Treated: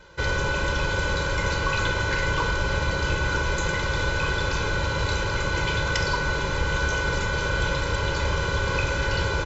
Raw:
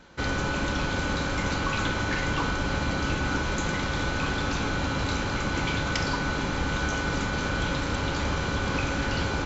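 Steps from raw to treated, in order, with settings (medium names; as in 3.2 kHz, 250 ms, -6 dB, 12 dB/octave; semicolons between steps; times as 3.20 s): comb 2 ms, depth 83%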